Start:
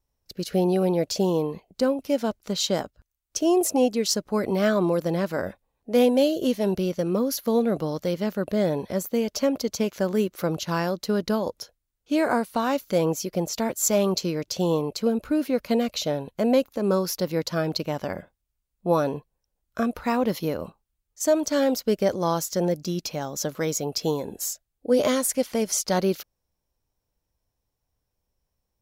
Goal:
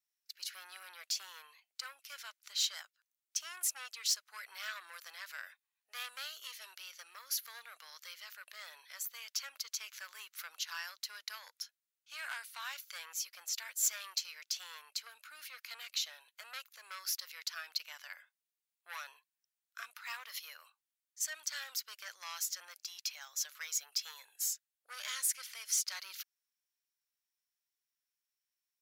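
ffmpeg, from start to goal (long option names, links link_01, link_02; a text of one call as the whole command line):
ffmpeg -i in.wav -af "asoftclip=type=tanh:threshold=-18.5dB,highpass=frequency=1500:width=0.5412,highpass=frequency=1500:width=1.3066,volume=-4.5dB" out.wav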